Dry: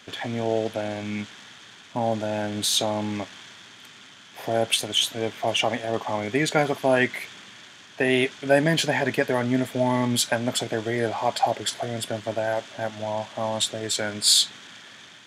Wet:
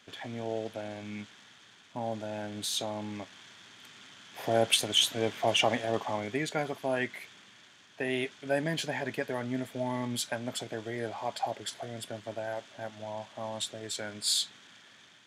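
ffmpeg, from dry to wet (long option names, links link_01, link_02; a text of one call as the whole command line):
ffmpeg -i in.wav -af "volume=-2.5dB,afade=type=in:start_time=3.18:duration=1.38:silence=0.421697,afade=type=out:start_time=5.77:duration=0.71:silence=0.398107" out.wav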